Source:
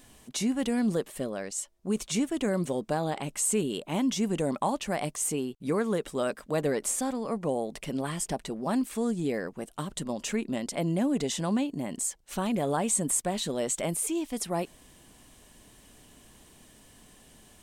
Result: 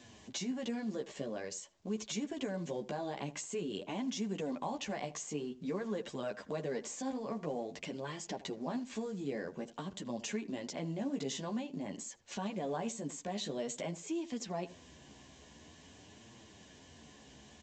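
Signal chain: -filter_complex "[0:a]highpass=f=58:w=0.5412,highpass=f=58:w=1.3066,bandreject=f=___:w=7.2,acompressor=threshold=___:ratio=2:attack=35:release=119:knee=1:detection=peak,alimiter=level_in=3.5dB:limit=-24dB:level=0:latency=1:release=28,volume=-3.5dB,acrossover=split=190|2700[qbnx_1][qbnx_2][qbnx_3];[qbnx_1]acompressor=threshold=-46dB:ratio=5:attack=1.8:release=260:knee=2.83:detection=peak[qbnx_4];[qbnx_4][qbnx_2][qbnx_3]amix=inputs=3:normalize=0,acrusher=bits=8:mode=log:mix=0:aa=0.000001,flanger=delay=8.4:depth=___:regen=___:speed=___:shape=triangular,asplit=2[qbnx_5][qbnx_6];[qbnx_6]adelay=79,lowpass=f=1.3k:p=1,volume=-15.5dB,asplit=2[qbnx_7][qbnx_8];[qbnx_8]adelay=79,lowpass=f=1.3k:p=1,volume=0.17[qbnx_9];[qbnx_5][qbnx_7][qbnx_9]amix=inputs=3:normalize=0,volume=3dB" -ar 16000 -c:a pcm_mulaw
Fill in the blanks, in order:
1.3k, -45dB, 7, -3, 0.49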